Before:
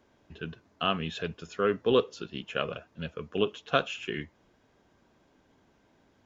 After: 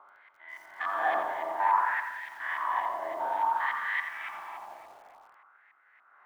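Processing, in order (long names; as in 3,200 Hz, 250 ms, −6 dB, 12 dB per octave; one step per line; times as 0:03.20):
spectrum averaged block by block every 400 ms
soft clipping −34 dBFS, distortion −7 dB
spring reverb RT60 2.1 s, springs 42/48 ms, chirp 70 ms, DRR 3.5 dB
auto-filter low-pass saw up 3.5 Hz 690–1,600 Hz
ring modulation 490 Hz
auto-filter high-pass sine 0.56 Hz 630–1,900 Hz
feedback echo at a low word length 86 ms, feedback 35%, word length 10 bits, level −8.5 dB
level +7 dB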